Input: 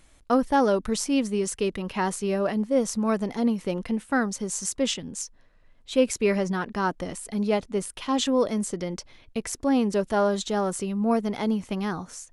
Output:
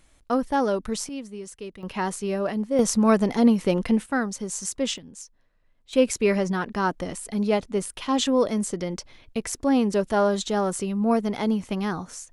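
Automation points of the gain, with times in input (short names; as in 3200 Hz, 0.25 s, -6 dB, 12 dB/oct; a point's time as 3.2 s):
-2 dB
from 1.09 s -11 dB
from 1.83 s -1 dB
from 2.79 s +6 dB
from 4.06 s -1 dB
from 4.98 s -8 dB
from 5.93 s +1.5 dB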